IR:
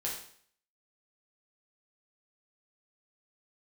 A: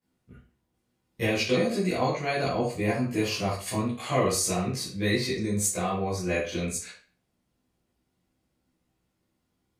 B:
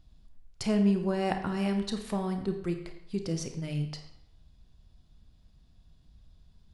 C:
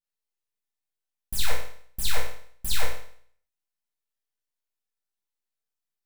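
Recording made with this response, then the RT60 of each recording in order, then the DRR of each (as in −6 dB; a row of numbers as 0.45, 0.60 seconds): C; 0.40, 0.75, 0.55 seconds; −12.5, 5.5, −4.0 decibels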